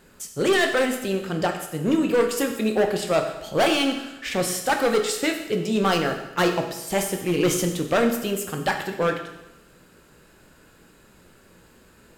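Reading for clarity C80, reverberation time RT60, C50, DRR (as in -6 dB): 9.5 dB, 0.95 s, 7.5 dB, 4.0 dB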